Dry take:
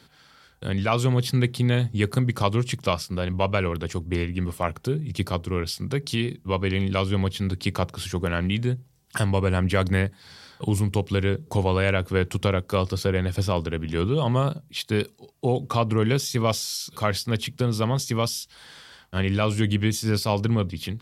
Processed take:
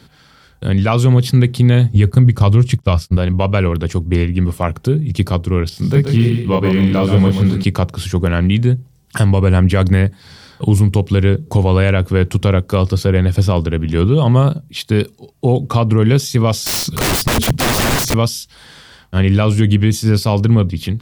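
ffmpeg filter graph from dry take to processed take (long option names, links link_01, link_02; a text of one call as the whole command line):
ffmpeg -i in.wav -filter_complex "[0:a]asettb=1/sr,asplit=3[link_01][link_02][link_03];[link_01]atrim=end=1.954[link_04];[link_02]atrim=start=1.95:end=3.17,asetpts=PTS-STARTPTS,afade=type=in:duration=0.004:curve=qsin,afade=type=out:start_time=1.216:duration=0.004:curve=qsin,agate=range=-33dB:threshold=-29dB:ratio=3:release=100:detection=peak,equalizer=frequency=68:width=1:gain=11[link_05];[link_03]atrim=start=3.166[link_06];[link_04][link_05]acrossfade=duration=0.004:curve1=hsin:curve2=qsin[link_07];[link_07][link_06]acrossfade=duration=0.004:curve1=qsin:curve2=hsin,asettb=1/sr,asplit=3[link_08][link_09][link_10];[link_08]atrim=end=5.694[link_11];[link_09]atrim=start=5.69:end=7.64,asetpts=PTS-STARTPTS,afade=type=in:duration=0.004:curve=qsin,afade=type=out:start_time=1.946:duration=0.004:curve=qsin,deesser=0.95,asplit=2[link_12][link_13];[link_13]adelay=27,volume=-2dB[link_14];[link_12][link_14]amix=inputs=2:normalize=0,atrim=end_sample=85995,aecho=1:1:131|262|393:0.447|0.125|0.035,atrim=end_sample=85995[link_15];[link_10]atrim=start=7.636[link_16];[link_11][link_15]acrossfade=duration=0.004:curve1=hsin:curve2=qsin[link_17];[link_17][link_16]acrossfade=duration=0.004:curve1=qsin:curve2=hsin,asettb=1/sr,asplit=3[link_18][link_19][link_20];[link_18]atrim=end=16.664[link_21];[link_19]atrim=start=16.66:end=18.14,asetpts=PTS-STARTPTS,afade=type=in:duration=0.004:curve=qsin,afade=type=out:start_time=1.476:duration=0.004:curve=qsin,lowshelf=frequency=280:gain=10,acontrast=90,aeval=exprs='(mod(7.94*val(0)+1,2)-1)/7.94':channel_layout=same[link_22];[link_20]atrim=start=18.136[link_23];[link_21][link_22]acrossfade=duration=0.004:curve1=hsin:curve2=qsin[link_24];[link_24][link_23]acrossfade=duration=0.004:curve1=qsin:curve2=hsin,lowshelf=frequency=310:gain=8,alimiter=level_in=6.5dB:limit=-1dB:release=50:level=0:latency=1,volume=-1dB" out.wav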